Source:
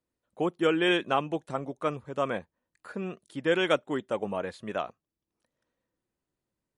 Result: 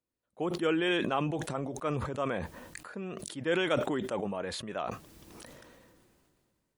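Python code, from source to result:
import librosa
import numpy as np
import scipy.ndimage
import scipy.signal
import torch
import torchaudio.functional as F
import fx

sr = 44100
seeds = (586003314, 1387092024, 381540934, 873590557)

y = fx.sustainer(x, sr, db_per_s=25.0)
y = F.gain(torch.from_numpy(y), -5.0).numpy()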